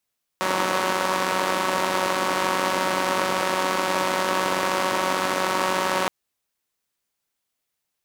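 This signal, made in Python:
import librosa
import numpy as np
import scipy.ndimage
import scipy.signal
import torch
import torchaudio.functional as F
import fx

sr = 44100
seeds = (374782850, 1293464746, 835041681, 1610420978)

y = fx.engine_four(sr, seeds[0], length_s=5.67, rpm=5600, resonances_hz=(320.0, 560.0, 950.0))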